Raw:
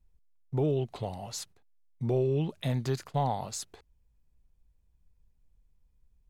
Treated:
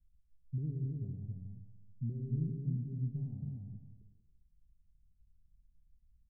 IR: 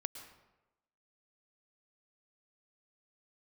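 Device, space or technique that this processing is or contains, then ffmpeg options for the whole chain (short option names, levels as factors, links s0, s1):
club heard from the street: -filter_complex "[0:a]alimiter=limit=0.0708:level=0:latency=1,lowpass=f=220:w=0.5412,lowpass=f=220:w=1.3066[s0];[1:a]atrim=start_sample=2205[s1];[s0][s1]afir=irnorm=-1:irlink=0,aecho=1:1:105|273:0.398|0.668,volume=0.841"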